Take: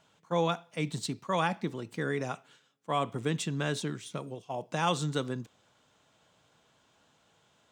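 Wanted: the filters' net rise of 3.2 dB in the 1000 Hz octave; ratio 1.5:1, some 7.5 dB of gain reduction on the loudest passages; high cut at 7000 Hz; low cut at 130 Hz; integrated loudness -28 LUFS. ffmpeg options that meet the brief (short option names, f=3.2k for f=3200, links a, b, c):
-af "highpass=130,lowpass=7k,equalizer=f=1k:t=o:g=4,acompressor=threshold=-43dB:ratio=1.5,volume=10.5dB"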